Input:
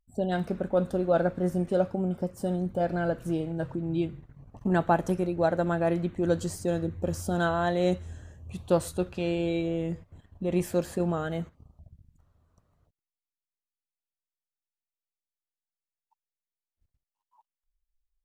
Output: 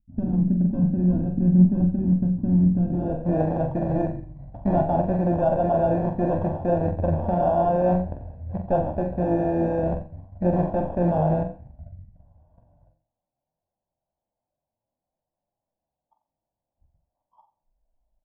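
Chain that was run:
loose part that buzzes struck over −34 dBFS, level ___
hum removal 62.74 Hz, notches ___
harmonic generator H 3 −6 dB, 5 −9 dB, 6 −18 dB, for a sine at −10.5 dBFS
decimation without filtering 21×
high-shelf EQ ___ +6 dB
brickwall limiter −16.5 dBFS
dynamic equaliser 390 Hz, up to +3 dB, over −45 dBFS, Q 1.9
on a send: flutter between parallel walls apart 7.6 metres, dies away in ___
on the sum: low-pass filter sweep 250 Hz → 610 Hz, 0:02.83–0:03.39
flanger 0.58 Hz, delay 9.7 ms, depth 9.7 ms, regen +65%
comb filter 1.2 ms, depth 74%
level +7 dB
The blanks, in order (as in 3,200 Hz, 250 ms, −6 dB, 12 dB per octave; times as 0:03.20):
−24 dBFS, 5, 5,100 Hz, 0.36 s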